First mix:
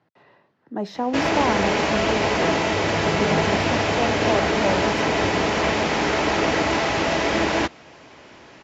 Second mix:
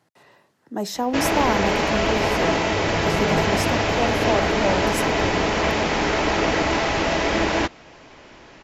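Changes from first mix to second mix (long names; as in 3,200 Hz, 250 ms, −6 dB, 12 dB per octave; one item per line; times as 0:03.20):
speech: remove high-frequency loss of the air 250 metres
master: remove high-pass filter 73 Hz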